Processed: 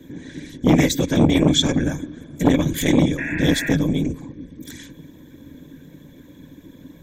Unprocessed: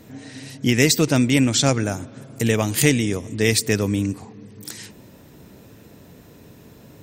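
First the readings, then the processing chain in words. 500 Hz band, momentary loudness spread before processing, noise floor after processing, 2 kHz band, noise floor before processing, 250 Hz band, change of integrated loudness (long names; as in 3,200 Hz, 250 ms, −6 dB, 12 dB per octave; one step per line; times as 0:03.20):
−0.5 dB, 20 LU, −46 dBFS, −2.0 dB, −47 dBFS, +3.0 dB, +0.5 dB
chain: hollow resonant body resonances 230/1,600/2,300/3,400 Hz, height 18 dB, ringing for 65 ms
random phases in short frames
EQ curve with evenly spaced ripples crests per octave 1.1, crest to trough 9 dB
healed spectral selection 0:03.21–0:03.68, 610–2,800 Hz after
saturating transformer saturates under 440 Hz
level −7.5 dB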